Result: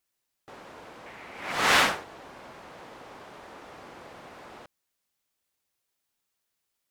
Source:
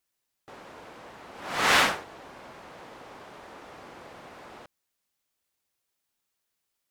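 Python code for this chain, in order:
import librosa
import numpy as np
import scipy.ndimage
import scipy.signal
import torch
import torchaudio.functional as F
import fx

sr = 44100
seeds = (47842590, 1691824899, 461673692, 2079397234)

y = fx.peak_eq(x, sr, hz=2200.0, db=10.0, octaves=0.55, at=(1.06, 1.52))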